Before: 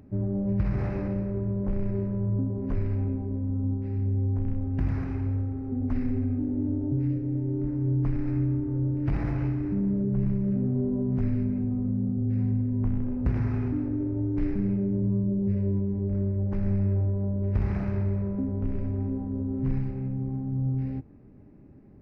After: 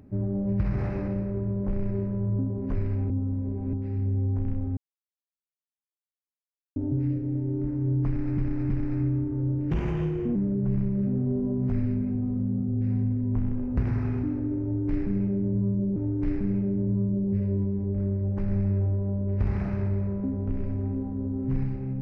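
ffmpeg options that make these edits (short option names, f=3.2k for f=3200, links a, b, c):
-filter_complex "[0:a]asplit=10[a][b][c][d][e][f][g][h][i][j];[a]atrim=end=3.102[k];[b]atrim=start=3.098:end=3.732,asetpts=PTS-STARTPTS,areverse[l];[c]atrim=start=3.728:end=4.77,asetpts=PTS-STARTPTS,afade=t=out:st=1.038:d=0.004:c=hsin[m];[d]atrim=start=4.77:end=6.76,asetpts=PTS-STARTPTS,volume=0[n];[e]atrim=start=6.76:end=8.382,asetpts=PTS-STARTPTS,afade=t=in:d=0.004:c=hsin[o];[f]atrim=start=8.058:end=8.382[p];[g]atrim=start=8.058:end=9.074[q];[h]atrim=start=9.07:end=9.84,asetpts=PTS-STARTPTS,asetrate=52920,aresample=44100[r];[i]atrim=start=9.836:end=15.452[s];[j]atrim=start=14.108[t];[k][l]acrossfade=d=0.004:c1=hsin:c2=hsin[u];[m][n][o]concat=n=3:v=0:a=1[v];[u][v]acrossfade=d=0.004:c1=hsin:c2=hsin[w];[w][p]acrossfade=d=0.004:c1=hsin:c2=hsin[x];[x][q]acrossfade=d=0.004:c1=hsin:c2=hsin[y];[y][r]acrossfade=d=0.004:c1=hsin:c2=hsin[z];[z][s]acrossfade=d=0.004:c1=hsin:c2=hsin[aa];[aa][t]acrossfade=d=0.004:c1=hsin:c2=hsin"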